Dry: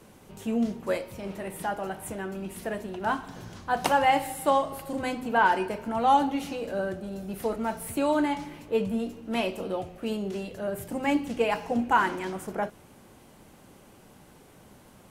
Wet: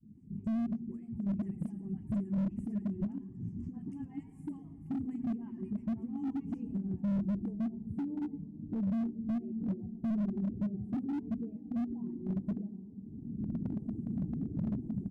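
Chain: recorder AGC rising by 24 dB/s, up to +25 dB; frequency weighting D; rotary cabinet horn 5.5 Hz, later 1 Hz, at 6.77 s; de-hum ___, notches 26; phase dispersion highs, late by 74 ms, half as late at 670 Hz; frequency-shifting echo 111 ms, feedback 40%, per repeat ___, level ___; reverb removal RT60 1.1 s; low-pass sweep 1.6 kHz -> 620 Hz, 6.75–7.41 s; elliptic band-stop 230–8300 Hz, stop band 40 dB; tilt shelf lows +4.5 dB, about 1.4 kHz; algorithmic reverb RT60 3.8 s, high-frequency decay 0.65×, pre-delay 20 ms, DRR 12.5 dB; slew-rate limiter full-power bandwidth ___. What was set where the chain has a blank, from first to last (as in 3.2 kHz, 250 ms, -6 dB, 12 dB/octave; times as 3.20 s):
179.7 Hz, +150 Hz, -11.5 dB, 7.1 Hz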